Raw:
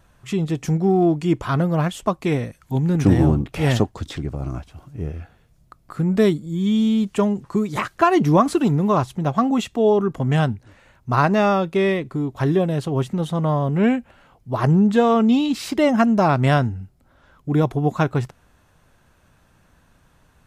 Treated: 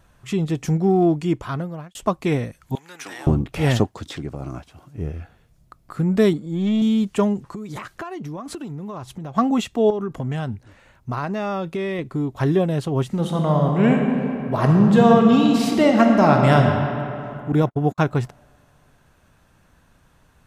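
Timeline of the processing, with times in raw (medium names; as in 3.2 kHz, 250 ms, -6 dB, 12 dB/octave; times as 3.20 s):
1.13–1.95 s: fade out
2.75–3.27 s: high-pass 1.3 kHz
3.87–4.98 s: high-pass 170 Hz 6 dB/octave
6.33–6.82 s: overdrive pedal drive 16 dB, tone 1.1 kHz, clips at -12 dBFS
7.48–9.37 s: compression 20:1, threshold -28 dBFS
9.90–11.99 s: compression, threshold -22 dBFS
13.06–16.64 s: reverb throw, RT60 2.9 s, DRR 1.5 dB
17.52–17.98 s: gate -26 dBFS, range -52 dB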